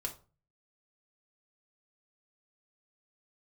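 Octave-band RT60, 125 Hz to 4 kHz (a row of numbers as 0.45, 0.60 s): 0.65, 0.45, 0.35, 0.35, 0.25, 0.25 s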